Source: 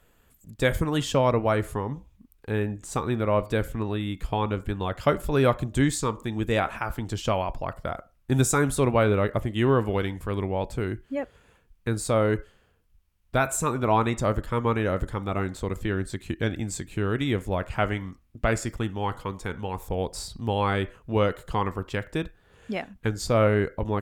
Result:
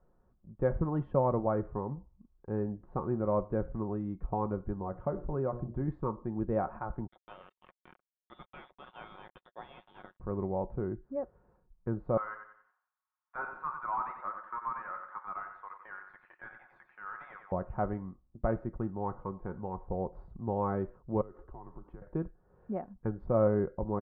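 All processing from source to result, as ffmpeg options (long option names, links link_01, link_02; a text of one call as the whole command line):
ffmpeg -i in.wav -filter_complex "[0:a]asettb=1/sr,asplit=3[link_01][link_02][link_03];[link_01]atrim=end=4.734[link_04];[link_02]atrim=start=4.73:end=5.88,asetpts=PTS-STARTPTS,afade=type=in:duration=0.004:curve=qsin,afade=type=out:start_time=1.146:duration=0.004:curve=qsin,highshelf=frequency=4200:gain=-9,bandreject=frequency=60:width_type=h:width=6,bandreject=frequency=120:width_type=h:width=6,bandreject=frequency=180:width_type=h:width=6,bandreject=frequency=240:width_type=h:width=6,bandreject=frequency=300:width_type=h:width=6,bandreject=frequency=360:width_type=h:width=6,bandreject=frequency=420:width_type=h:width=6,bandreject=frequency=480:width_type=h:width=6,acompressor=threshold=-25dB:ratio=2:attack=3.2:release=140:knee=1:detection=peak[link_05];[link_03]atrim=start=5.876[link_06];[link_04][link_05]acrossfade=duration=0.004:curve1=hsin:curve2=qsin[link_07];[link_07][link_06]acrossfade=duration=0.004:curve1=qsin:curve2=hsin,asettb=1/sr,asplit=3[link_08][link_09][link_10];[link_08]atrim=end=7.074[link_11];[link_09]atrim=start=7.07:end=10.2,asetpts=PTS-STARTPTS,afade=type=in:duration=0.004:curve=qsin,afade=type=out:start_time=3.126:duration=0.004:curve=qsin,lowpass=frequency=3100:width_type=q:width=0.5098,lowpass=frequency=3100:width_type=q:width=0.6013,lowpass=frequency=3100:width_type=q:width=0.9,lowpass=frequency=3100:width_type=q:width=2.563,afreqshift=-3700,acrusher=bits=3:mix=0:aa=0.5[link_12];[link_10]atrim=start=10.196[link_13];[link_11][link_12]acrossfade=duration=0.004:curve1=hsin:curve2=qsin[link_14];[link_14][link_13]acrossfade=duration=0.004:curve1=qsin:curve2=hsin,asettb=1/sr,asplit=3[link_15][link_16][link_17];[link_15]atrim=end=12.174[link_18];[link_16]atrim=start=12.17:end=17.52,asetpts=PTS-STARTPTS,afade=type=in:duration=0.004:curve=qsin,afade=type=out:start_time=5.346:duration=0.004:curve=qsin,highpass=frequency=1200:width=0.5412,highpass=frequency=1200:width=1.3066,asplit=2[link_19][link_20];[link_20]highpass=frequency=720:poles=1,volume=18dB,asoftclip=type=tanh:threshold=-13.5dB[link_21];[link_19][link_21]amix=inputs=2:normalize=0,lowpass=frequency=2400:poles=1,volume=-6dB,aecho=1:1:92|184|276|368:0.447|0.17|0.0645|0.0245,atrim=end_sample=235935[link_22];[link_17]atrim=start=17.516[link_23];[link_18][link_22]acrossfade=duration=0.004:curve1=hsin:curve2=qsin[link_24];[link_24][link_23]acrossfade=duration=0.004:curve1=qsin:curve2=hsin,asettb=1/sr,asplit=3[link_25][link_26][link_27];[link_25]atrim=end=21.214[link_28];[link_26]atrim=start=21.21:end=22.02,asetpts=PTS-STARTPTS,afade=type=in:duration=0.004:curve=qsin,afade=type=out:start_time=0.806:duration=0.004:curve=qsin,acompressor=threshold=-36dB:ratio=16:attack=3.2:release=140:knee=1:detection=peak,afreqshift=-72[link_29];[link_27]atrim=start=22.016[link_30];[link_28][link_29]acrossfade=duration=0.004:curve1=hsin:curve2=qsin[link_31];[link_31][link_30]acrossfade=duration=0.004:curve1=qsin:curve2=hsin,lowpass=frequency=1100:width=0.5412,lowpass=frequency=1100:width=1.3066,aecho=1:1:5.5:0.37,volume=-6dB" out.wav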